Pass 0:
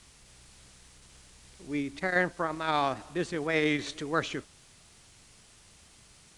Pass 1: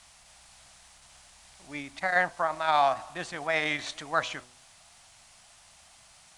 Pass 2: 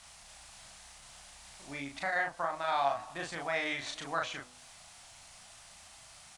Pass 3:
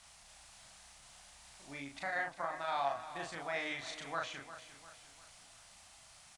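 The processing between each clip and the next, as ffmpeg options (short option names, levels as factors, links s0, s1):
-af "lowshelf=f=540:t=q:w=3:g=-8,bandreject=f=123.9:t=h:w=4,bandreject=f=247.8:t=h:w=4,bandreject=f=371.7:t=h:w=4,bandreject=f=495.6:t=h:w=4,bandreject=f=619.5:t=h:w=4,bandreject=f=743.4:t=h:w=4,bandreject=f=867.3:t=h:w=4,bandreject=f=991.2:t=h:w=4,bandreject=f=1115.1:t=h:w=4,volume=1.19"
-filter_complex "[0:a]acompressor=threshold=0.00631:ratio=1.5,asplit=2[s0][s1];[s1]adelay=36,volume=0.75[s2];[s0][s2]amix=inputs=2:normalize=0"
-af "aecho=1:1:351|702|1053|1404:0.224|0.101|0.0453|0.0204,volume=0.562"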